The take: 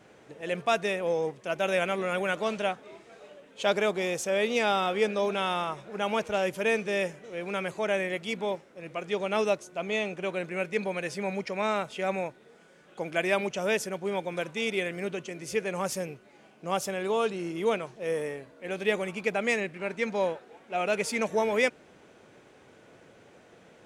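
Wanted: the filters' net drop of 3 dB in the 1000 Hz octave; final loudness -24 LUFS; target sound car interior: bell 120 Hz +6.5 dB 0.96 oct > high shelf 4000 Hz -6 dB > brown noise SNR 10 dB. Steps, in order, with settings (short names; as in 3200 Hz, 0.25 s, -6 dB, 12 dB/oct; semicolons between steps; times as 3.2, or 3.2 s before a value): bell 120 Hz +6.5 dB 0.96 oct; bell 1000 Hz -4 dB; high shelf 4000 Hz -6 dB; brown noise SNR 10 dB; gain +7 dB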